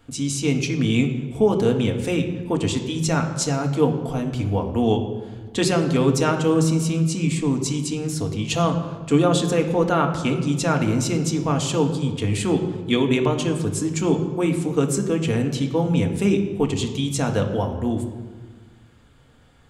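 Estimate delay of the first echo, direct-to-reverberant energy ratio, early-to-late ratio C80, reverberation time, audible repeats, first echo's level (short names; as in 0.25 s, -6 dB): none, 3.0 dB, 10.0 dB, 1.5 s, none, none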